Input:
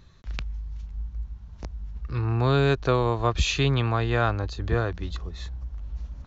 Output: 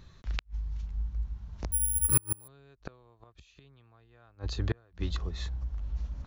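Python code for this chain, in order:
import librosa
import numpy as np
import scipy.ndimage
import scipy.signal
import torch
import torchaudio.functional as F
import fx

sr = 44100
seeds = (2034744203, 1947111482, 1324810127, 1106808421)

y = fx.gate_flip(x, sr, shuts_db=-17.0, range_db=-36)
y = fx.resample_bad(y, sr, factor=4, down='none', up='zero_stuff', at=(1.72, 2.48))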